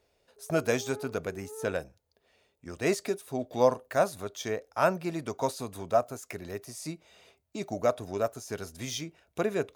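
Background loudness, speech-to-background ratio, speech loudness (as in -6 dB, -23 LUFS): -46.0 LUFS, 14.5 dB, -31.5 LUFS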